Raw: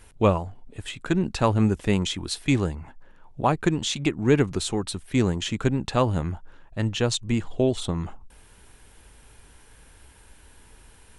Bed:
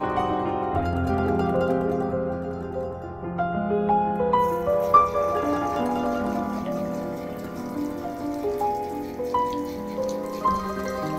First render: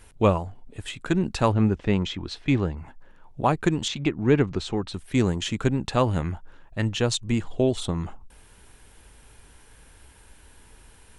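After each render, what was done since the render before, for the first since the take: 1.52–2.77 air absorption 160 m; 3.88–4.94 air absorption 130 m; 6.05–6.86 dynamic EQ 2100 Hz, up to +5 dB, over -50 dBFS, Q 1.4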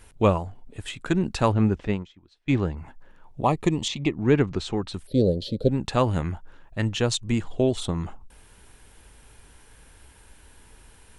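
1.87–2.53 upward expander 2.5:1, over -35 dBFS; 3.42–4.15 Butterworth band-stop 1500 Hz, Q 2.8; 5.07–5.69 EQ curve 370 Hz 0 dB, 540 Hz +15 dB, 980 Hz -28 dB, 1600 Hz -27 dB, 2600 Hz -20 dB, 4300 Hz +7 dB, 6700 Hz -23 dB, 12000 Hz 0 dB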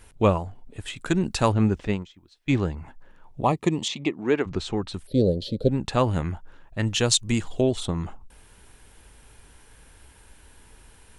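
0.96–2.77 high shelf 5100 Hz +9 dB; 3.51–4.45 HPF 91 Hz -> 390 Hz; 6.87–7.61 high shelf 3400 Hz +10.5 dB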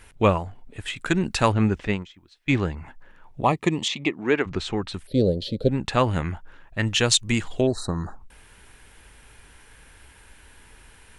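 7.69–8.2 spectral repair 1900–3800 Hz after; bell 2000 Hz +6.5 dB 1.5 oct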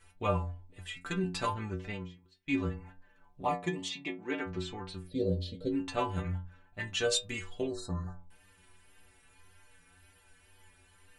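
metallic resonator 88 Hz, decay 0.46 s, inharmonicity 0.008; wow and flutter 27 cents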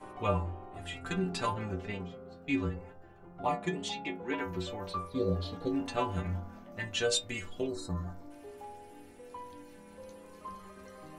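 add bed -22 dB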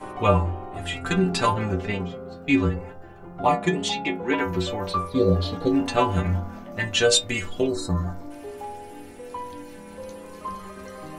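gain +11 dB

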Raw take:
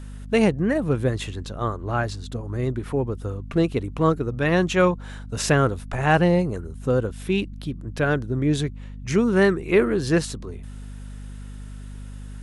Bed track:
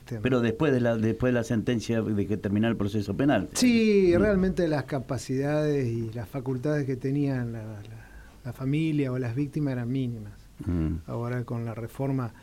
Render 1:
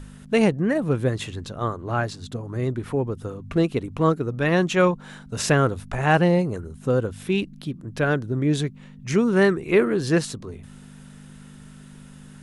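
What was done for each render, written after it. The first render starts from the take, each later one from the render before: de-hum 50 Hz, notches 2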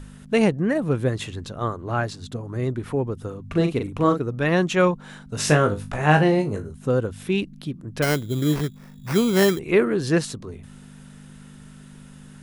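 3.48–4.21 doubler 41 ms -5.5 dB; 5.36–6.7 flutter echo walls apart 3.4 m, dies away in 0.2 s; 8.02–9.59 sample-rate reducer 3600 Hz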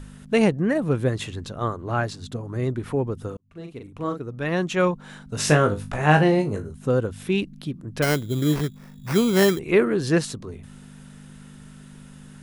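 3.37–5.28 fade in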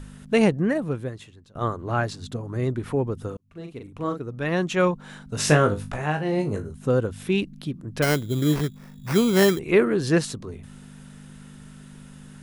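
0.65–1.55 fade out quadratic, to -20 dB; 5.87–6.49 dip -10.5 dB, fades 0.26 s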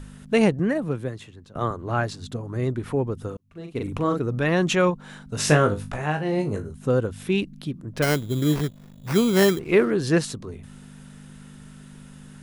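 0.59–1.71 three-band squash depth 40%; 3.75–4.9 fast leveller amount 50%; 7.93–9.91 backlash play -41.5 dBFS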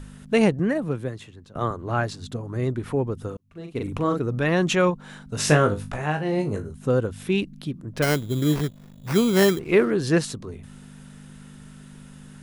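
nothing audible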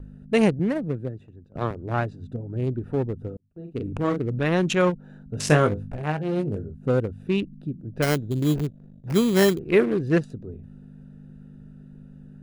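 Wiener smoothing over 41 samples; gate with hold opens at -38 dBFS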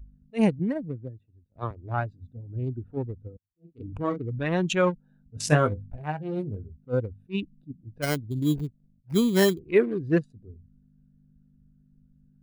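per-bin expansion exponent 1.5; attack slew limiter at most 400 dB/s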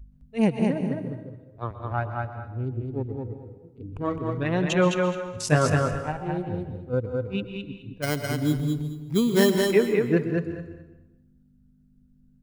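feedback echo 0.211 s, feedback 20%, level -3.5 dB; plate-style reverb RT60 0.98 s, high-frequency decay 0.8×, pre-delay 0.11 s, DRR 9 dB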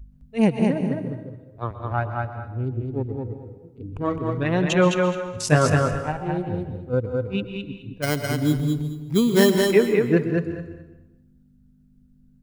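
gain +3 dB

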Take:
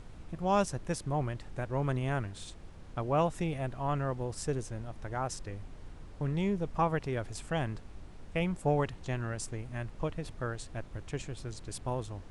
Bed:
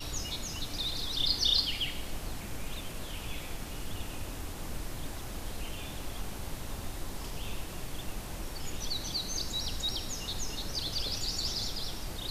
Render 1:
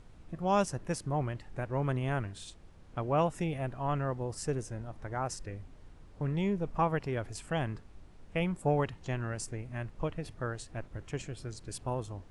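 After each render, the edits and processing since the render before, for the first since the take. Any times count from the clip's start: noise print and reduce 6 dB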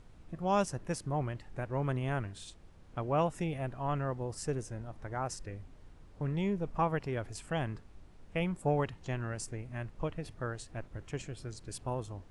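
gain -1.5 dB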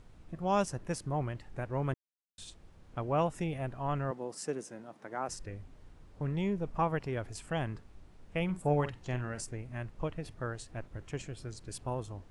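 1.94–2.38 mute; 4.11–5.29 HPF 190 Hz 24 dB/oct; 8.44–9.41 doubler 48 ms -10.5 dB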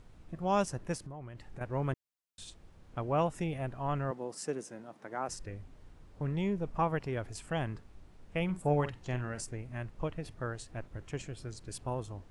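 0.96–1.61 compressor 16:1, threshold -40 dBFS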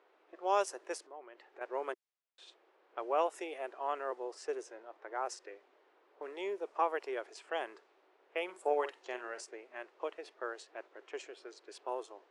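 low-pass opened by the level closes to 2400 Hz, open at -28.5 dBFS; elliptic high-pass 370 Hz, stop band 60 dB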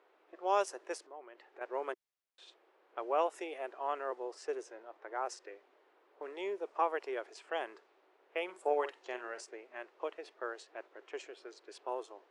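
high shelf 8200 Hz -5 dB

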